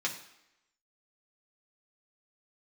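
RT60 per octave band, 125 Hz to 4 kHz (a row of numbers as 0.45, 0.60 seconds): 0.60, 0.80, 0.85, 0.85, 0.85, 0.80 seconds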